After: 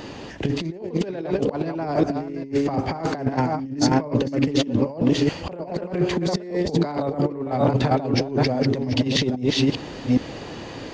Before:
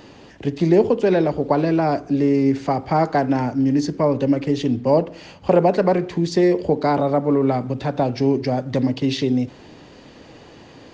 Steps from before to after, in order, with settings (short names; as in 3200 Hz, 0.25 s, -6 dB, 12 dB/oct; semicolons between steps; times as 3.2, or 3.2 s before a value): reverse delay 0.407 s, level -4.5 dB; negative-ratio compressor -23 dBFS, ratio -0.5; gain +1.5 dB